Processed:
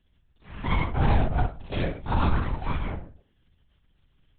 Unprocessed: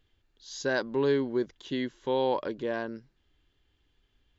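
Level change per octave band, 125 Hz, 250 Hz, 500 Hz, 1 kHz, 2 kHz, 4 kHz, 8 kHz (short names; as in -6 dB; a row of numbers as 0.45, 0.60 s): +16.5 dB, +0.5 dB, -7.5 dB, +5.5 dB, +0.5 dB, -1.0 dB, n/a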